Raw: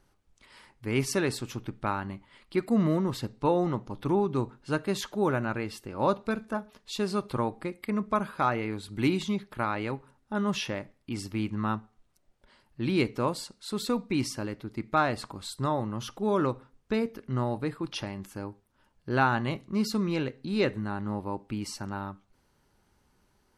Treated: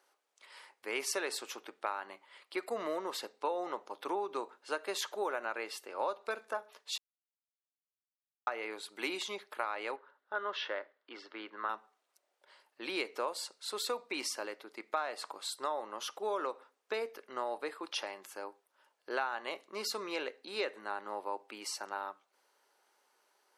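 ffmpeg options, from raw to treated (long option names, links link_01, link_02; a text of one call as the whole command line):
ffmpeg -i in.wav -filter_complex "[0:a]asettb=1/sr,asplit=3[link_01][link_02][link_03];[link_01]atrim=end=9.964[link_04];[link_02]atrim=start=9.96:end=11.69,asetpts=PTS-STARTPTS,afade=type=in:duration=0.004:curve=qsin,afade=type=out:start_time=1.726:duration=0.004:curve=qsin,highpass=270,equalizer=frequency=790:width_type=q:width=4:gain=-5,equalizer=frequency=1500:width_type=q:width=4:gain=6,equalizer=frequency=2500:width_type=q:width=4:gain=-9,lowpass=frequency=3700:width=0.5412,lowpass=frequency=3700:width=1.3066[link_05];[link_03]atrim=start=11.686[link_06];[link_04][link_05]acrossfade=duration=0.004:curve1=hsin:curve2=qsin[link_07];[link_07][link_06]acrossfade=duration=0.004:curve1=qsin:curve2=hsin,asplit=3[link_08][link_09][link_10];[link_08]atrim=end=6.98,asetpts=PTS-STARTPTS,afade=type=out:start_time=6.976:duration=0.004:curve=hsin[link_11];[link_09]atrim=start=6.98:end=8.47,asetpts=PTS-STARTPTS,volume=0[link_12];[link_10]atrim=start=8.47,asetpts=PTS-STARTPTS,afade=type=in:duration=0.004:curve=hsin[link_13];[link_11][link_12][link_13]concat=n=3:v=0:a=1,highpass=frequency=460:width=0.5412,highpass=frequency=460:width=1.3066,acompressor=threshold=-31dB:ratio=6" out.wav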